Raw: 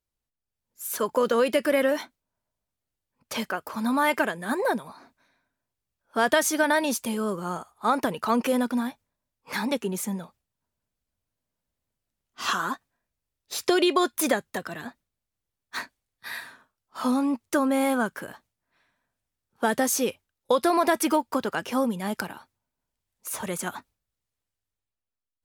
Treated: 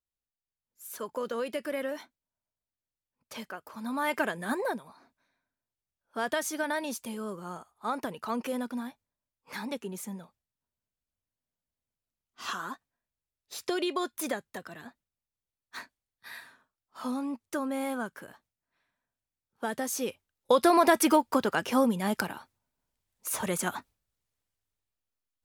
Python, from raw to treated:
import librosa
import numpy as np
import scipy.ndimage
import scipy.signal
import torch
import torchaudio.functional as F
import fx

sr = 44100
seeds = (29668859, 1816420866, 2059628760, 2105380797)

y = fx.gain(x, sr, db=fx.line((3.8, -11.0), (4.41, -1.5), (4.8, -9.0), (19.85, -9.0), (20.62, 0.5)))